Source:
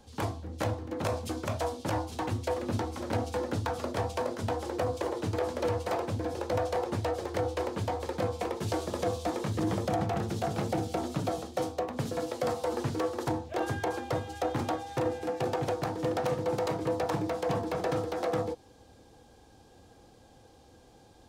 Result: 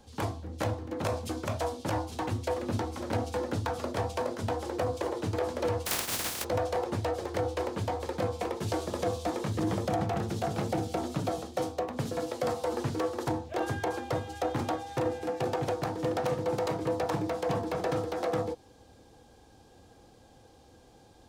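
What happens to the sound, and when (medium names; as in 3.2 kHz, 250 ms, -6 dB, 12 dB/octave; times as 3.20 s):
5.85–6.43 s: spectral contrast reduction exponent 0.17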